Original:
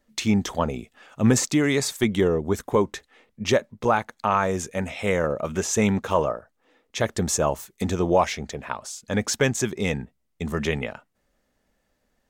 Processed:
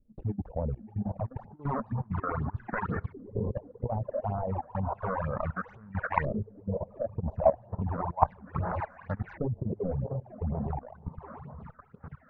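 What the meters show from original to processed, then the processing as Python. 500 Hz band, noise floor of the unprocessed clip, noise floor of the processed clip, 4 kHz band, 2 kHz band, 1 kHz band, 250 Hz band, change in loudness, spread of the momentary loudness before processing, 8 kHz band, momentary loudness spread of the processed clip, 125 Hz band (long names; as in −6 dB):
−9.5 dB, −72 dBFS, −58 dBFS, below −35 dB, −11.5 dB, −5.0 dB, −11.5 dB, −9.0 dB, 11 LU, below −40 dB, 10 LU, −3.5 dB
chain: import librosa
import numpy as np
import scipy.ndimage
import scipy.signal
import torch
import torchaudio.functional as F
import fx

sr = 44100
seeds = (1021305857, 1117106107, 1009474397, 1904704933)

y = scipy.ndimage.median_filter(x, 41, mode='constant')
y = fx.echo_diffused(y, sr, ms=647, feedback_pct=46, wet_db=-10.0)
y = fx.phaser_stages(y, sr, stages=8, low_hz=110.0, high_hz=4100.0, hz=2.1, feedback_pct=25)
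y = fx.over_compress(y, sr, threshold_db=-26.0, ratio=-0.5)
y = fx.filter_lfo_lowpass(y, sr, shape='saw_up', hz=0.32, low_hz=370.0, high_hz=1800.0, q=2.9)
y = fx.curve_eq(y, sr, hz=(120.0, 360.0, 900.0), db=(0, -18, 2))
y = fx.level_steps(y, sr, step_db=12)
y = fx.high_shelf(y, sr, hz=2500.0, db=-10.0)
y = fx.dereverb_blind(y, sr, rt60_s=1.5)
y = y * librosa.db_to_amplitude(7.5)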